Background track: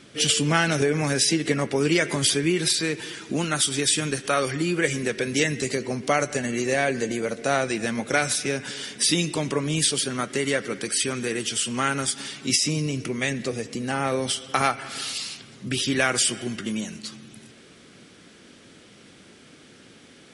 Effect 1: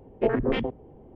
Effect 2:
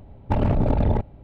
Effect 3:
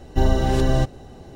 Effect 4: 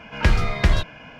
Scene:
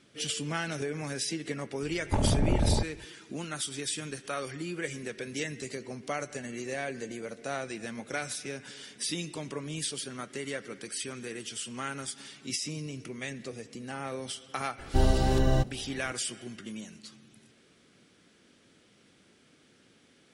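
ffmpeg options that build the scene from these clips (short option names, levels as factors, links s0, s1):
-filter_complex "[0:a]volume=0.251[s0];[2:a]atrim=end=1.23,asetpts=PTS-STARTPTS,volume=0.531,afade=t=in:d=0.004:c=hsin,afade=t=out:st=1.226:d=0.004:c=hsin,adelay=1820[s1];[3:a]atrim=end=1.35,asetpts=PTS-STARTPTS,volume=0.531,afade=t=in:d=0.004:c=hsin,afade=t=out:st=1.346:d=0.004:c=hsin,adelay=14780[s2];[s0][s1][s2]amix=inputs=3:normalize=0"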